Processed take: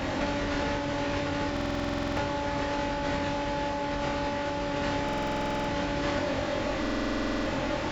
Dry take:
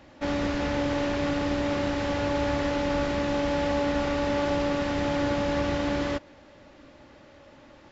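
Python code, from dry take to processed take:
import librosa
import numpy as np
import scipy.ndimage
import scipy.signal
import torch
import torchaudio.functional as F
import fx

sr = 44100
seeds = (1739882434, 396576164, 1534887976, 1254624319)

y = fx.over_compress(x, sr, threshold_db=-38.0, ratio=-1.0)
y = fx.room_flutter(y, sr, wall_m=3.8, rt60_s=0.27)
y = fx.buffer_glitch(y, sr, at_s=(1.52, 5.04, 6.81), block=2048, repeats=13)
y = y * 10.0 ** (9.0 / 20.0)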